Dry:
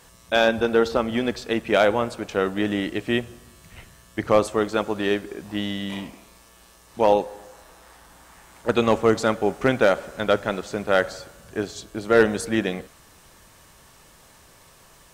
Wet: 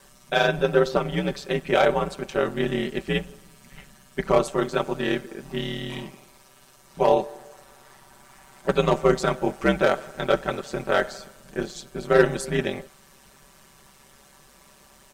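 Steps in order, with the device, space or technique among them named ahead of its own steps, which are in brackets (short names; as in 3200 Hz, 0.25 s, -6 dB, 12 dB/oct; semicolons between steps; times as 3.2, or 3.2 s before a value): ring-modulated robot voice (ring modulator 69 Hz; comb 5.2 ms)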